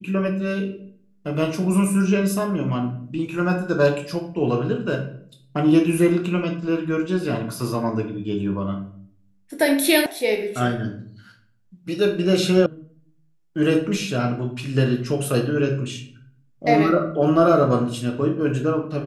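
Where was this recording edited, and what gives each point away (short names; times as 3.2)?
10.06 sound cut off
12.66 sound cut off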